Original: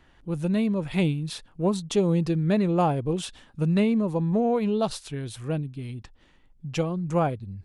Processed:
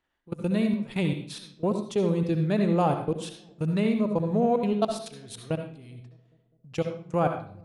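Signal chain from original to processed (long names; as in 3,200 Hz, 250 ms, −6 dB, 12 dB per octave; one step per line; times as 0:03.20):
floating-point word with a short mantissa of 8 bits
dynamic equaliser 120 Hz, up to +7 dB, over −37 dBFS, Q 0.71
output level in coarse steps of 21 dB
noise gate −51 dBFS, range −15 dB
bass and treble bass −9 dB, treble +1 dB
delay with a low-pass on its return 203 ms, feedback 61%, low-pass 520 Hz, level −23 dB
on a send at −5 dB: convolution reverb RT60 0.45 s, pre-delay 62 ms
on the sum: level +1.5 dB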